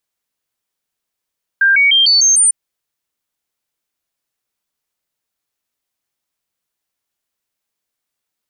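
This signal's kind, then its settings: stepped sine 1590 Hz up, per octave 2, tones 6, 0.15 s, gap 0.00 s -7.5 dBFS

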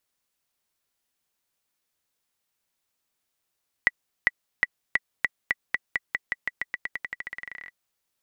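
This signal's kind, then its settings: bouncing ball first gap 0.40 s, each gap 0.9, 1960 Hz, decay 33 ms -5.5 dBFS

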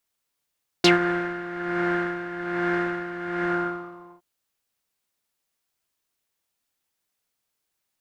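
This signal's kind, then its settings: synth patch with tremolo F4, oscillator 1 triangle, interval +12 st, oscillator 2 level -8 dB, sub -12.5 dB, noise -4.5 dB, filter lowpass, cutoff 980 Hz, Q 5.6, filter envelope 2.5 oct, filter decay 0.07 s, filter sustain 30%, attack 3.5 ms, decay 0.14 s, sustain -14 dB, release 0.78 s, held 2.59 s, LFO 1.2 Hz, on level 10 dB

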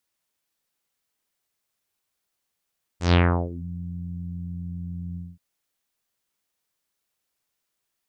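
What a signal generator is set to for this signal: synth note saw F2 24 dB/oct, low-pass 190 Hz, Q 2.3, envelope 5.5 oct, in 0.63 s, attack 0.131 s, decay 0.36 s, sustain -19.5 dB, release 0.22 s, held 2.16 s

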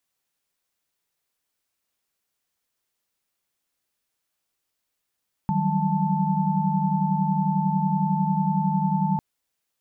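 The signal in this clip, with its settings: chord D#3/F#3/G3/A5 sine, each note -25.5 dBFS 3.70 s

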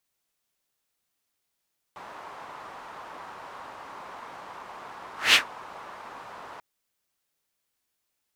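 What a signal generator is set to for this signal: whoosh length 4.64 s, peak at 3.38, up 0.19 s, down 0.12 s, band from 1000 Hz, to 3000 Hz, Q 2.2, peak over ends 26 dB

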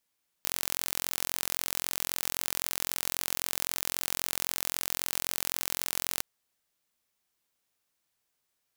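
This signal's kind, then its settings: pulse train 43.8/s, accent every 0, -3.5 dBFS 5.76 s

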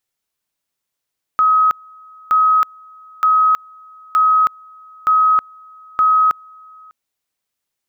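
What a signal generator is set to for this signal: two-level tone 1270 Hz -9.5 dBFS, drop 29 dB, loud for 0.32 s, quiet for 0.60 s, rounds 6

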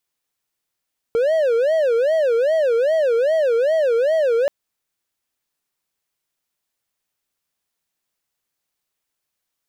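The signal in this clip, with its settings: siren wail 456–648 Hz 2.5/s triangle -12.5 dBFS 3.33 s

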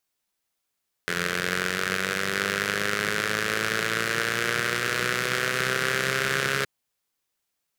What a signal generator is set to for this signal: four-cylinder engine model, changing speed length 5.57 s, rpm 2600, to 4100, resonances 180/420/1500 Hz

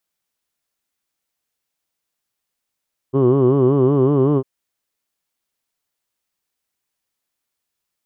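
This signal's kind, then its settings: formant vowel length 1.30 s, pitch 129 Hz, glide +1.5 st, vibrato depth 1.2 st, F1 370 Hz, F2 1100 Hz, F3 3000 Hz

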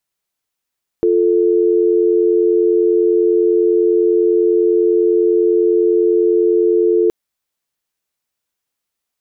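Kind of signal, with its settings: call progress tone dial tone, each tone -13 dBFS 6.07 s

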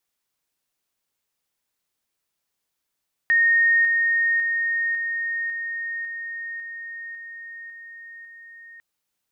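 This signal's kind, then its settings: level ladder 1850 Hz -14.5 dBFS, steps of -3 dB, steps 10, 0.55 s 0.00 s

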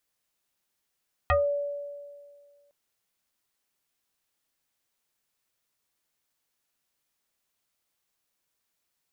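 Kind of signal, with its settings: FM tone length 1.41 s, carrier 574 Hz, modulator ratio 1.14, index 3, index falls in 0.21 s exponential, decay 1.92 s, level -18 dB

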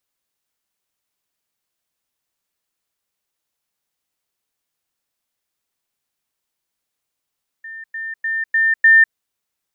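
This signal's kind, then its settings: level ladder 1800 Hz -30.5 dBFS, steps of 6 dB, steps 5, 0.20 s 0.10 s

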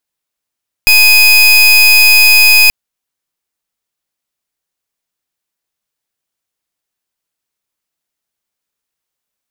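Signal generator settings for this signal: pulse 2500 Hz, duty 30% -5.5 dBFS 1.83 s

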